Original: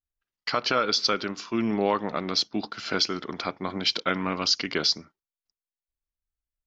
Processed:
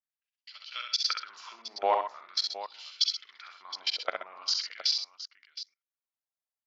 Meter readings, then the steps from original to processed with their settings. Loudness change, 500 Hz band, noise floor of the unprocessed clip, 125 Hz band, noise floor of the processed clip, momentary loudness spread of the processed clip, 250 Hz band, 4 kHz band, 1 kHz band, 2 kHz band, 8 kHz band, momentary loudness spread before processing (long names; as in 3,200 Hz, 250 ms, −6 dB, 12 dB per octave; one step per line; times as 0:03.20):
−4.5 dB, −8.0 dB, below −85 dBFS, below −35 dB, below −85 dBFS, 17 LU, below −25 dB, −3.5 dB, −4.0 dB, −10.0 dB, can't be measured, 8 LU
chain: output level in coarse steps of 23 dB
auto-filter high-pass sine 0.43 Hz 660–3,200 Hz
multi-tap delay 48/66/128/131/717 ms −13/−5/−12.5/−17/−13 dB
level −4 dB